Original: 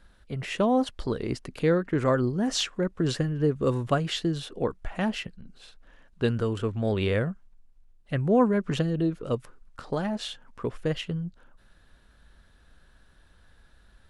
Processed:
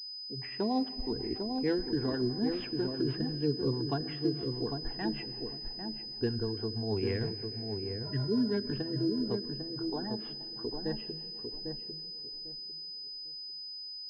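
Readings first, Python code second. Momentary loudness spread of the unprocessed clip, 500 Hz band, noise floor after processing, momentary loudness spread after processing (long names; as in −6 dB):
10 LU, −7.0 dB, −43 dBFS, 9 LU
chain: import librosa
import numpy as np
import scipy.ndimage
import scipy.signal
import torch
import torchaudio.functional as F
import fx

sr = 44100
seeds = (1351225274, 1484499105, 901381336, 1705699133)

y = fx.peak_eq(x, sr, hz=150.0, db=12.5, octaves=0.67)
y = fx.spec_repair(y, sr, seeds[0], start_s=8.07, length_s=0.4, low_hz=460.0, high_hz=1500.0, source='after')
y = fx.noise_reduce_blind(y, sr, reduce_db=21)
y = fx.fixed_phaser(y, sr, hz=840.0, stages=8)
y = fx.rev_plate(y, sr, seeds[1], rt60_s=3.9, hf_ratio=0.95, predelay_ms=0, drr_db=13.0)
y = fx.rotary(y, sr, hz=6.3)
y = fx.echo_filtered(y, sr, ms=799, feedback_pct=24, hz=860.0, wet_db=-4.5)
y = fx.pwm(y, sr, carrier_hz=5000.0)
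y = F.gain(torch.from_numpy(y), -3.0).numpy()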